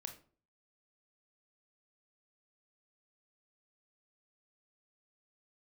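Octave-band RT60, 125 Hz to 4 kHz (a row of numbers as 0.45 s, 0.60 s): 0.55 s, 0.50 s, 0.50 s, 0.40 s, 0.30 s, 0.30 s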